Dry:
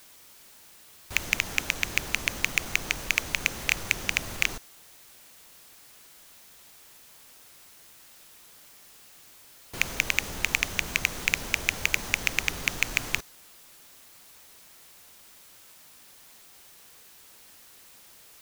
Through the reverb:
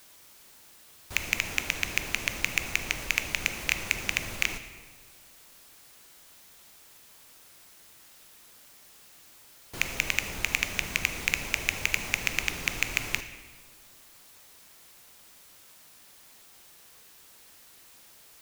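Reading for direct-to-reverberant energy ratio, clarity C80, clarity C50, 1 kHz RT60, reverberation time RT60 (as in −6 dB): 9.0 dB, 12.0 dB, 10.5 dB, 1.4 s, 1.5 s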